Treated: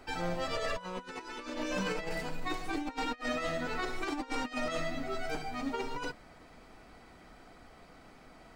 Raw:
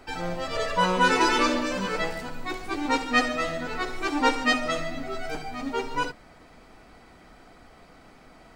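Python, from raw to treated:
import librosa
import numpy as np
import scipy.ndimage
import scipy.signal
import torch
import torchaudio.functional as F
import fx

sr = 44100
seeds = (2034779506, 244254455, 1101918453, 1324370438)

y = fx.comb(x, sr, ms=6.5, depth=0.55, at=(1.54, 3.24))
y = fx.over_compress(y, sr, threshold_db=-28.0, ratio=-0.5)
y = F.gain(torch.from_numpy(y), -6.5).numpy()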